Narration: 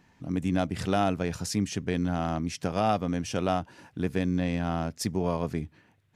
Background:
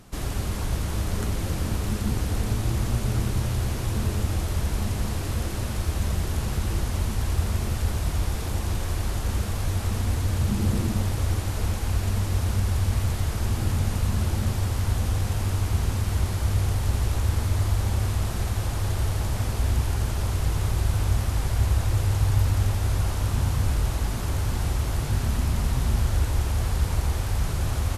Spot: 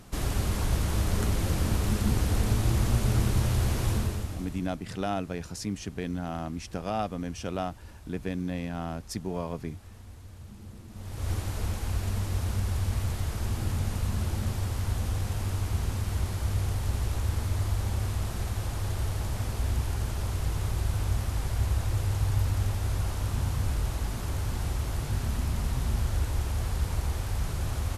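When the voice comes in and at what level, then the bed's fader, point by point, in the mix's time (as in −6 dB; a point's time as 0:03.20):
4.10 s, −5.0 dB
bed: 0:03.91 0 dB
0:04.82 −22 dB
0:10.87 −22 dB
0:11.30 −5 dB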